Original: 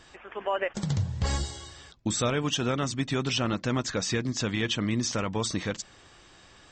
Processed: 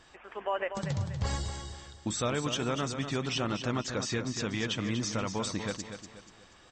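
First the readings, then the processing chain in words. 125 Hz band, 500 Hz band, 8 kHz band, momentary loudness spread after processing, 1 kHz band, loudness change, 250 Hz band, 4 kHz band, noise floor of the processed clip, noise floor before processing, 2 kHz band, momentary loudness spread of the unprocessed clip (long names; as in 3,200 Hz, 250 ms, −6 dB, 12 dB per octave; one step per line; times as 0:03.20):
−4.0 dB, −3.0 dB, −4.5 dB, 11 LU, −2.0 dB, −4.0 dB, −4.0 dB, −4.0 dB, −57 dBFS, −55 dBFS, −3.5 dB, 9 LU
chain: parametric band 890 Hz +2.5 dB 1.6 octaves
floating-point word with a short mantissa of 8 bits
on a send: repeating echo 241 ms, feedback 38%, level −8.5 dB
on the sum: level −5 dB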